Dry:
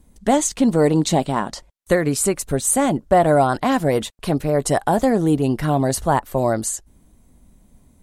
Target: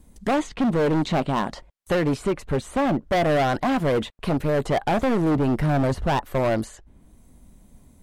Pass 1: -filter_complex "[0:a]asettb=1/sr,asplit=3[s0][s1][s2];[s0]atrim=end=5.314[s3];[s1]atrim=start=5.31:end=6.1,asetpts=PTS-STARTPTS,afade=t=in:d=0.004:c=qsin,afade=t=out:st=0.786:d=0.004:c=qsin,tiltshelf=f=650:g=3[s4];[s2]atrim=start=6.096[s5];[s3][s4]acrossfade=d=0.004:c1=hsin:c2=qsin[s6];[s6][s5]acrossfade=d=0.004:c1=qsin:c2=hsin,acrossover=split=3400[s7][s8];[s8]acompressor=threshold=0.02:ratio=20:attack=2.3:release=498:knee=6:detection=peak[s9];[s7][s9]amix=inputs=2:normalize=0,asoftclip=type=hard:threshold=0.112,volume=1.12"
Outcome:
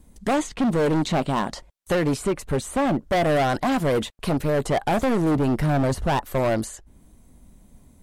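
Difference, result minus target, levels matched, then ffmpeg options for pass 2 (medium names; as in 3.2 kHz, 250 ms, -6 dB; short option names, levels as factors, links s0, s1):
compression: peak gain reduction -10 dB
-filter_complex "[0:a]asettb=1/sr,asplit=3[s0][s1][s2];[s0]atrim=end=5.314[s3];[s1]atrim=start=5.31:end=6.1,asetpts=PTS-STARTPTS,afade=t=in:d=0.004:c=qsin,afade=t=out:st=0.786:d=0.004:c=qsin,tiltshelf=f=650:g=3[s4];[s2]atrim=start=6.096[s5];[s3][s4]acrossfade=d=0.004:c1=hsin:c2=qsin[s6];[s6][s5]acrossfade=d=0.004:c1=qsin:c2=hsin,acrossover=split=3400[s7][s8];[s8]acompressor=threshold=0.00596:ratio=20:attack=2.3:release=498:knee=6:detection=peak[s9];[s7][s9]amix=inputs=2:normalize=0,asoftclip=type=hard:threshold=0.112,volume=1.12"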